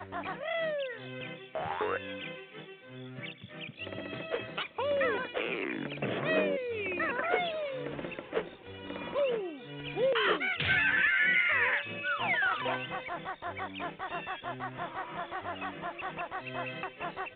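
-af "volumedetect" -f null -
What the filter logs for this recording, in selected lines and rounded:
mean_volume: -33.6 dB
max_volume: -15.6 dB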